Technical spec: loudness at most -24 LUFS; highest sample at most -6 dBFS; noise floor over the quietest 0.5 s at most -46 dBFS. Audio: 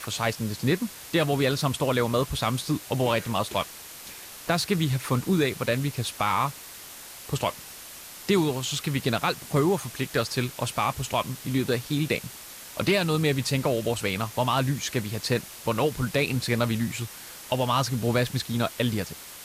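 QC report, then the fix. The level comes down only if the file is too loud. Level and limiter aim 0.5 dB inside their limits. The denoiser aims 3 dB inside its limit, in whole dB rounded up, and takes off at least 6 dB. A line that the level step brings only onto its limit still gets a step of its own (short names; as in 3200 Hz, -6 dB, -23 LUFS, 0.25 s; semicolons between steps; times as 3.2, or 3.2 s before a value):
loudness -26.5 LUFS: OK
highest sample -10.0 dBFS: OK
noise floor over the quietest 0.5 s -43 dBFS: fail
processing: denoiser 6 dB, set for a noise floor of -43 dBFS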